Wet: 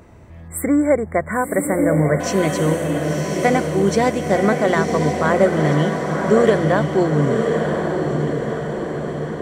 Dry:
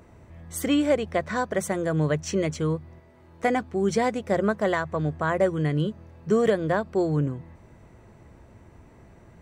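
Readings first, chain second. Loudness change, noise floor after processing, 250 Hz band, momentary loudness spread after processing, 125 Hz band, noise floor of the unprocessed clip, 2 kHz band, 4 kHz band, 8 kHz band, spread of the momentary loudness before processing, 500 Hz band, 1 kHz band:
+7.0 dB, -37 dBFS, +8.0 dB, 8 LU, +8.0 dB, -53 dBFS, +8.0 dB, +5.5 dB, +8.0 dB, 7 LU, +8.5 dB, +8.5 dB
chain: diffused feedback echo 1.03 s, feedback 59%, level -3.5 dB; spectral delete 0.48–2.2, 2300–7300 Hz; gain +6 dB

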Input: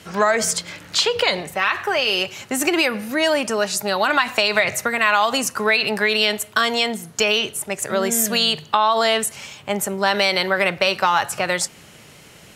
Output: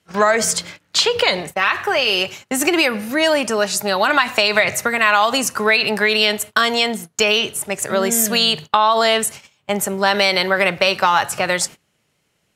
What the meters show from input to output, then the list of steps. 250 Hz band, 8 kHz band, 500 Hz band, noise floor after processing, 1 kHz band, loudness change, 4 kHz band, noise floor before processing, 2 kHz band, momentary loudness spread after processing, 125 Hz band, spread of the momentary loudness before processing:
+2.5 dB, +2.5 dB, +2.5 dB, -67 dBFS, +2.5 dB, +2.5 dB, +2.5 dB, -46 dBFS, +2.5 dB, 6 LU, +2.5 dB, 6 LU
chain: gate -32 dBFS, range -24 dB; gain +2.5 dB

